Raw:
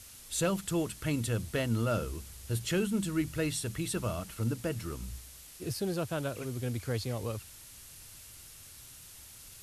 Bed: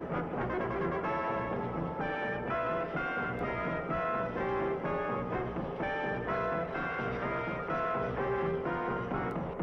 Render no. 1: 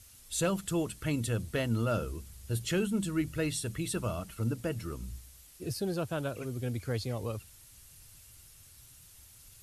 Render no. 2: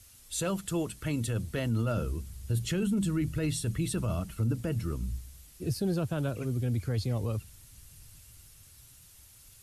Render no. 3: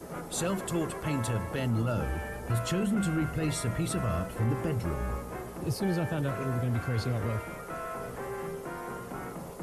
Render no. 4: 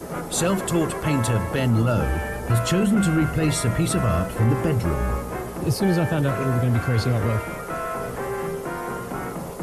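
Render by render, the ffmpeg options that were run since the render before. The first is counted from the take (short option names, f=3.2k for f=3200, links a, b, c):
-af "afftdn=nr=7:nf=-51"
-filter_complex "[0:a]acrossover=split=270|2500[a][b][c];[a]dynaudnorm=f=200:g=17:m=7.5dB[d];[d][b][c]amix=inputs=3:normalize=0,alimiter=limit=-22dB:level=0:latency=1:release=13"
-filter_complex "[1:a]volume=-5dB[a];[0:a][a]amix=inputs=2:normalize=0"
-af "volume=9dB"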